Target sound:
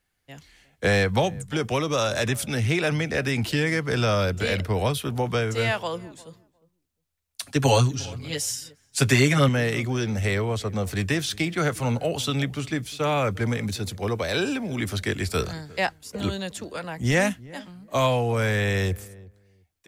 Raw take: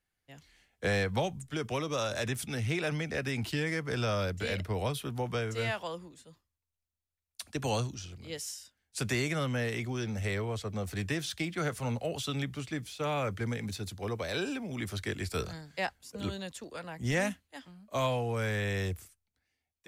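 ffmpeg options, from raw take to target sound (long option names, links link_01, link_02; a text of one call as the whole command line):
ffmpeg -i in.wav -filter_complex "[0:a]asettb=1/sr,asplit=3[link_01][link_02][link_03];[link_01]atrim=end=7.424[link_04];[link_02]atrim=start=7.42:end=9.49,asetpts=PTS-STARTPTS,afade=type=in:duration=0.004:curve=qsin,afade=type=out:start_time=2.066:duration=0.004:curve=qsin,aecho=1:1:7.3:1,atrim=end_sample=91287[link_05];[link_03]atrim=start=9.486[link_06];[link_04][link_05]acrossfade=duration=0.004:curve1=hsin:curve2=qsin[link_07];[link_07][link_06]acrossfade=duration=0.004:curve1=qsin:curve2=hsin,asplit=2[link_08][link_09];[link_09]adelay=354,lowpass=frequency=900:poles=1,volume=-20dB,asplit=2[link_10][link_11];[link_11]adelay=354,lowpass=frequency=900:poles=1,volume=0.18[link_12];[link_08][link_10][link_12]amix=inputs=3:normalize=0,volume=8.5dB" out.wav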